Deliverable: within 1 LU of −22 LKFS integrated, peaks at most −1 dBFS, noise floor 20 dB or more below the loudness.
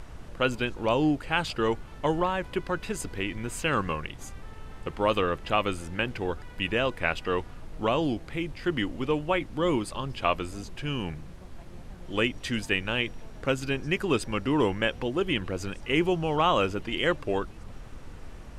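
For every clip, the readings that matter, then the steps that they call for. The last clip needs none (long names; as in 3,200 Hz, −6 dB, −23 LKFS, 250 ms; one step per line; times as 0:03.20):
background noise floor −44 dBFS; target noise floor −49 dBFS; integrated loudness −28.5 LKFS; sample peak −9.0 dBFS; target loudness −22.0 LKFS
→ noise reduction from a noise print 6 dB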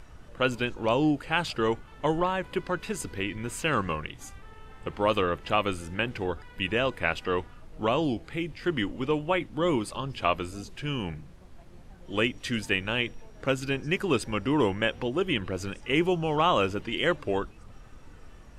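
background noise floor −50 dBFS; integrated loudness −28.5 LKFS; sample peak −9.0 dBFS; target loudness −22.0 LKFS
→ level +6.5 dB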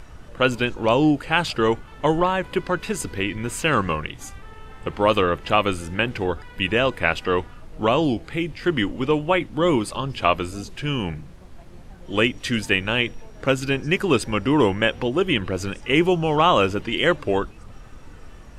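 integrated loudness −22.0 LKFS; sample peak −2.5 dBFS; background noise floor −43 dBFS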